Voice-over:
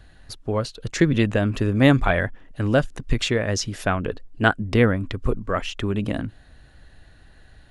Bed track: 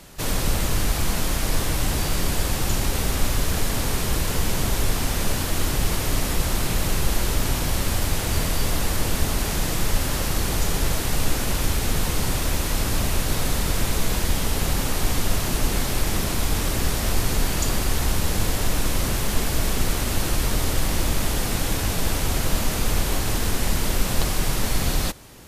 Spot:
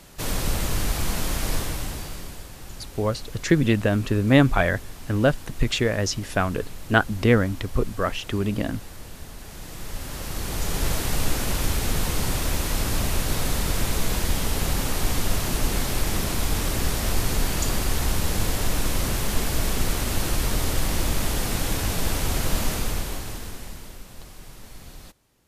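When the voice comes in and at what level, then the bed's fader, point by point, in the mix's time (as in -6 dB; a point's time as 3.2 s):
2.50 s, -0.5 dB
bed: 1.53 s -2.5 dB
2.5 s -17.5 dB
9.38 s -17.5 dB
10.88 s -1.5 dB
22.69 s -1.5 dB
24.06 s -20.5 dB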